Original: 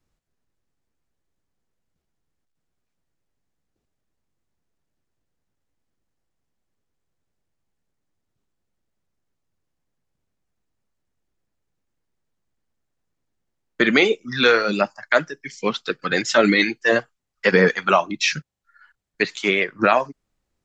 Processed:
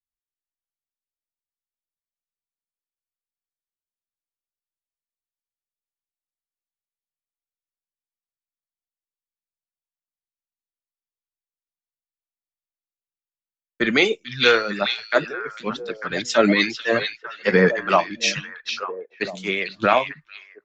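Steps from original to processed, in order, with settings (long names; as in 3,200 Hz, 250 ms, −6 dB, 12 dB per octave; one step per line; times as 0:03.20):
on a send: echo through a band-pass that steps 449 ms, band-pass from 3,500 Hz, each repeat −1.4 octaves, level −1 dB
on the sum: multiband upward and downward expander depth 100%
level −3 dB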